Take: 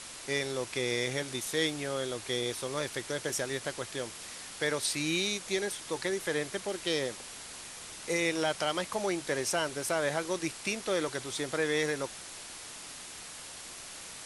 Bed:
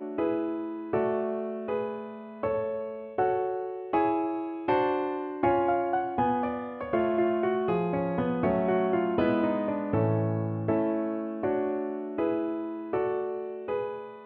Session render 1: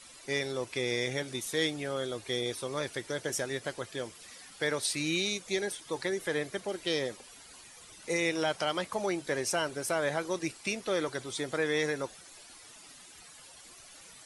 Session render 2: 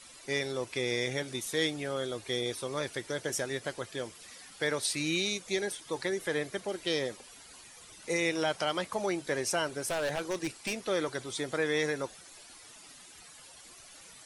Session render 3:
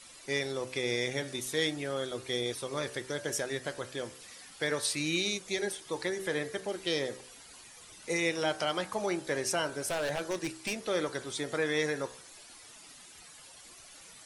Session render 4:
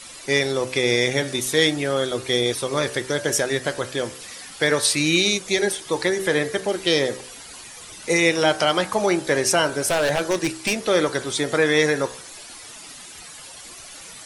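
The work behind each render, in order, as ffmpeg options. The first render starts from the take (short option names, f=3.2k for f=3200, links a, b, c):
-af "afftdn=nr=12:nf=-45"
-filter_complex "[0:a]asettb=1/sr,asplit=3[a][b][c];[a]atrim=end=9.784[d];[b]atrim=start=9.78:end=10.81,asetpts=PTS-STARTPTS,afade=t=in:d=0.004:c=qsin,afade=t=out:st=1.026:d=0.004:c=qsin,aeval=exprs='0.0562*(abs(mod(val(0)/0.0562+3,4)-2)-1)':c=same[e];[c]atrim=start=10.806[f];[d][e]acrossfade=d=0.004:c1=hsin:c2=qsin[g];[g][f]acrossfade=d=0.004:c1=qsin:c2=hsin"
-af "bandreject=f=64.06:t=h:w=4,bandreject=f=128.12:t=h:w=4,bandreject=f=192.18:t=h:w=4,bandreject=f=256.24:t=h:w=4,bandreject=f=320.3:t=h:w=4,bandreject=f=384.36:t=h:w=4,bandreject=f=448.42:t=h:w=4,bandreject=f=512.48:t=h:w=4,bandreject=f=576.54:t=h:w=4,bandreject=f=640.6:t=h:w=4,bandreject=f=704.66:t=h:w=4,bandreject=f=768.72:t=h:w=4,bandreject=f=832.78:t=h:w=4,bandreject=f=896.84:t=h:w=4,bandreject=f=960.9:t=h:w=4,bandreject=f=1.02496k:t=h:w=4,bandreject=f=1.08902k:t=h:w=4,bandreject=f=1.15308k:t=h:w=4,bandreject=f=1.21714k:t=h:w=4,bandreject=f=1.2812k:t=h:w=4,bandreject=f=1.34526k:t=h:w=4,bandreject=f=1.40932k:t=h:w=4,bandreject=f=1.47338k:t=h:w=4,bandreject=f=1.53744k:t=h:w=4,bandreject=f=1.6015k:t=h:w=4,bandreject=f=1.66556k:t=h:w=4,bandreject=f=1.72962k:t=h:w=4,bandreject=f=1.79368k:t=h:w=4,bandreject=f=1.85774k:t=h:w=4,bandreject=f=1.9218k:t=h:w=4"
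-af "volume=12dB"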